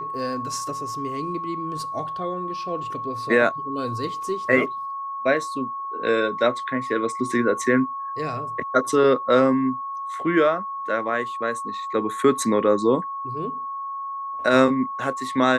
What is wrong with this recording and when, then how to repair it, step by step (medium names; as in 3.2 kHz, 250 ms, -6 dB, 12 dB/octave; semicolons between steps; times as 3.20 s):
whine 1.1 kHz -28 dBFS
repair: band-stop 1.1 kHz, Q 30